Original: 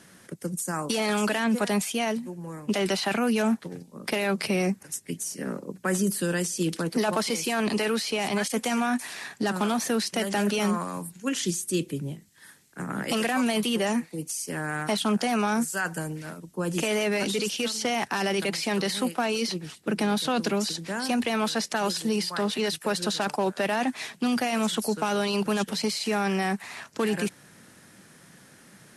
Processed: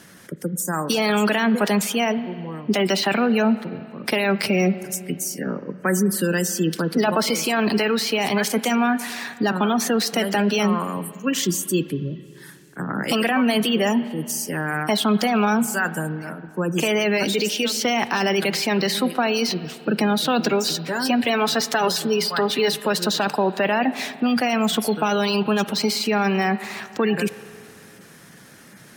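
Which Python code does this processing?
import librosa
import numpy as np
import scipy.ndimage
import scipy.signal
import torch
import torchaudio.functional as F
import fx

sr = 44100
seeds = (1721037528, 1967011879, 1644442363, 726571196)

y = fx.high_shelf(x, sr, hz=2600.0, db=2.5)
y = fx.spec_gate(y, sr, threshold_db=-25, keep='strong')
y = fx.comb(y, sr, ms=7.2, depth=0.49, at=(20.5, 22.68))
y = fx.rev_spring(y, sr, rt60_s=2.4, pass_ms=(38, 55), chirp_ms=20, drr_db=14.0)
y = np.interp(np.arange(len(y)), np.arange(len(y))[::2], y[::2])
y = y * librosa.db_to_amplitude(5.5)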